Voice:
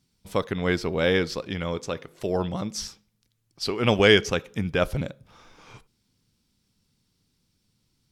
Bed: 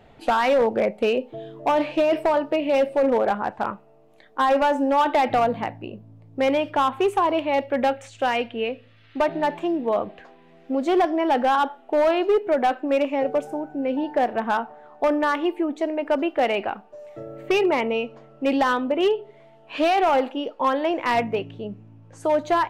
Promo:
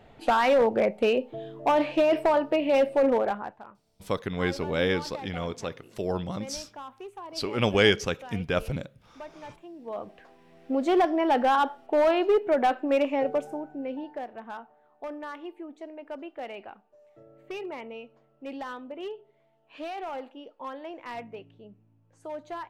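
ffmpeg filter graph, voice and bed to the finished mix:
-filter_complex "[0:a]adelay=3750,volume=-3.5dB[a];[1:a]volume=16.5dB,afade=t=out:st=3.06:d=0.57:silence=0.112202,afade=t=in:st=9.75:d=0.9:silence=0.11885,afade=t=out:st=13.13:d=1.13:silence=0.199526[b];[a][b]amix=inputs=2:normalize=0"

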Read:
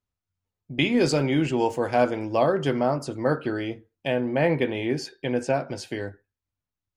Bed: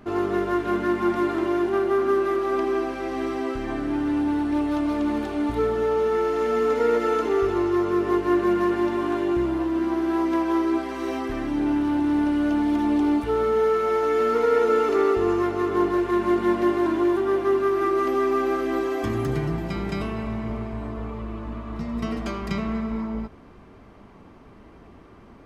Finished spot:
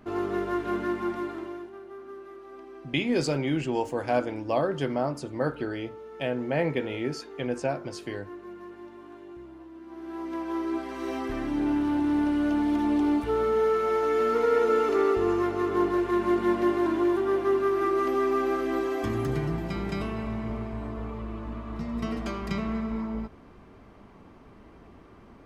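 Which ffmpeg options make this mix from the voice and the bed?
-filter_complex "[0:a]adelay=2150,volume=-4.5dB[a];[1:a]volume=13.5dB,afade=t=out:st=0.8:d=0.93:silence=0.149624,afade=t=in:st=9.85:d=1.46:silence=0.11885[b];[a][b]amix=inputs=2:normalize=0"

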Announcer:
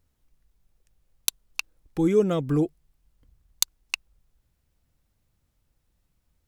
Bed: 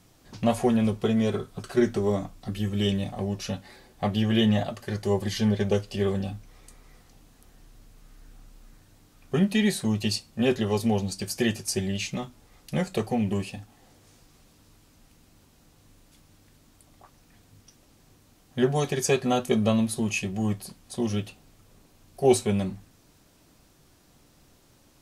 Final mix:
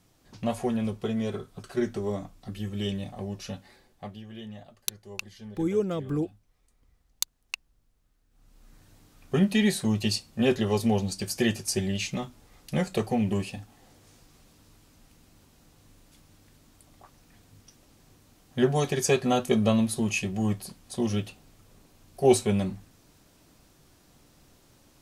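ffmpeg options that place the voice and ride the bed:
-filter_complex "[0:a]adelay=3600,volume=-5.5dB[a];[1:a]volume=14.5dB,afade=t=out:st=3.63:d=0.59:silence=0.188365,afade=t=in:st=8.3:d=0.57:silence=0.1[b];[a][b]amix=inputs=2:normalize=0"

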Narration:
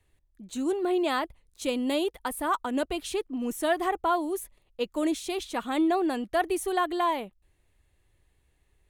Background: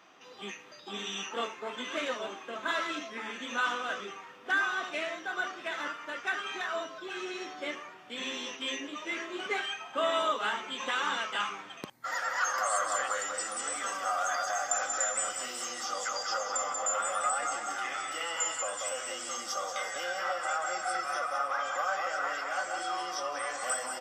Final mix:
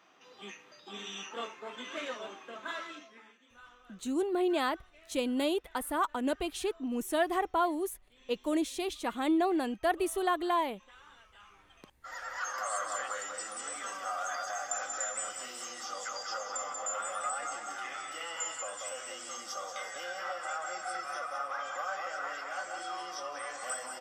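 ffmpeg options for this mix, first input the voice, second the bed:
-filter_complex "[0:a]adelay=3500,volume=-3dB[a];[1:a]volume=15.5dB,afade=t=out:st=2.46:d=0.92:silence=0.0944061,afade=t=in:st=11.41:d=1.31:silence=0.0944061[b];[a][b]amix=inputs=2:normalize=0"

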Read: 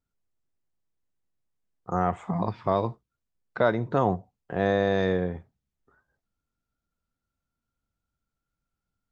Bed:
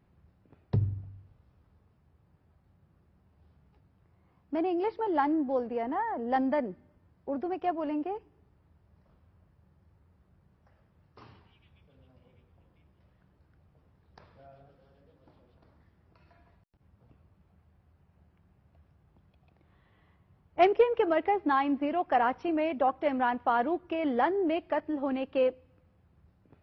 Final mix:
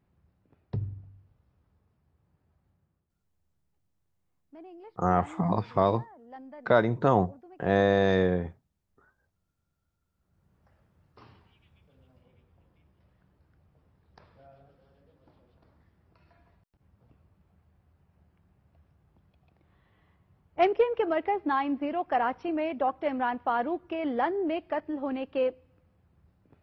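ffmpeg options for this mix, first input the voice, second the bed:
-filter_complex "[0:a]adelay=3100,volume=1dB[a];[1:a]volume=12.5dB,afade=t=out:st=2.65:d=0.44:silence=0.211349,afade=t=in:st=10.13:d=0.48:silence=0.133352[b];[a][b]amix=inputs=2:normalize=0"

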